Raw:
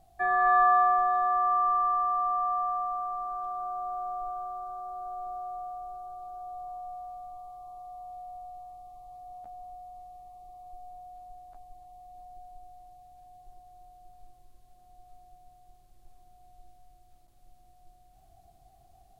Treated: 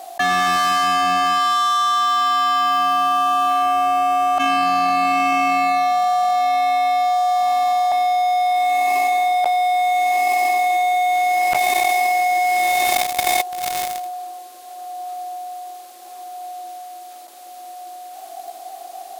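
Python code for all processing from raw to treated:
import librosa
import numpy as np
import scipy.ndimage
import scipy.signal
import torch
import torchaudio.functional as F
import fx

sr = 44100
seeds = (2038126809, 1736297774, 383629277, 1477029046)

y = fx.chain(x, sr, fx.highpass(hz=540.0, slope=24),
    fx.over_compress(threshold_db=-43.0, ratio=-0.5), at=(4.38, 7.92))
y = scipy.signal.sosfilt(scipy.signal.bessel(8, 540.0, 'highpass', norm='mag', fs=sr, output='sos'), y)
y = fx.leveller(y, sr, passes=5)
y = fx.env_flatten(y, sr, amount_pct=100)
y = y * librosa.db_to_amplitude(-1.5)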